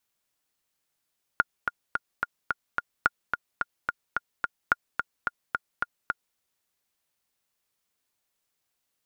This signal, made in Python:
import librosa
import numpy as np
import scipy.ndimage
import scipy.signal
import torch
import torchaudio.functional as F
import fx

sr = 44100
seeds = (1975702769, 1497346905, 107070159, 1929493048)

y = fx.click_track(sr, bpm=217, beats=6, bars=3, hz=1420.0, accent_db=6.0, level_db=-6.5)